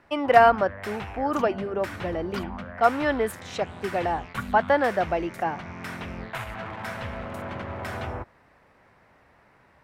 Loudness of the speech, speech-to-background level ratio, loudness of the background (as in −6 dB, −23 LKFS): −24.5 LKFS, 12.0 dB, −36.5 LKFS